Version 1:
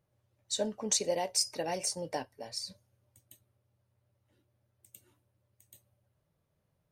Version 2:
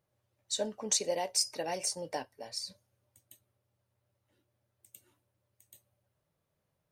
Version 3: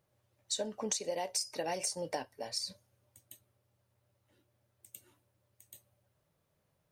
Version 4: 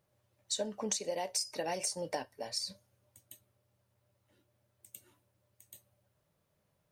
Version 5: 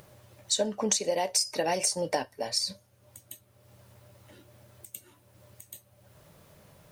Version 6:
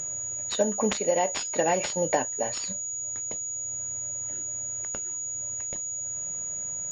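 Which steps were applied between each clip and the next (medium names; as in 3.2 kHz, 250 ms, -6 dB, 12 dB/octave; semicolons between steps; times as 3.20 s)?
bass shelf 250 Hz -6.5 dB
compression 10:1, threshold -35 dBFS, peak gain reduction 11.5 dB; trim +3.5 dB
feedback comb 200 Hz, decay 0.17 s, harmonics odd, mix 40%; trim +4 dB
upward compressor, threshold -51 dBFS; trim +8 dB
class-D stage that switches slowly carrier 6.8 kHz; trim +4 dB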